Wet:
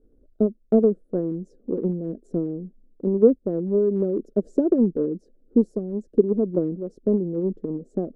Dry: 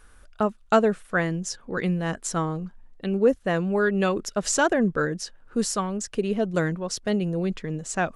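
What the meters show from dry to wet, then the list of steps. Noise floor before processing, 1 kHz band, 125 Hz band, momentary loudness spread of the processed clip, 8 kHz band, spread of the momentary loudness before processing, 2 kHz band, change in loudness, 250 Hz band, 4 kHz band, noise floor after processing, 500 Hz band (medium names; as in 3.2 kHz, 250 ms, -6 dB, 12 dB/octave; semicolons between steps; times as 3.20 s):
-53 dBFS, under -15 dB, -2.0 dB, 11 LU, under -35 dB, 9 LU, under -30 dB, +2.0 dB, +3.5 dB, under -35 dB, -61 dBFS, +3.0 dB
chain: inverse Chebyshev low-pass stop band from 920 Hz, stop band 40 dB; resonant low shelf 180 Hz -11 dB, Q 1.5; transient shaper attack +7 dB, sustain +2 dB; trim +2 dB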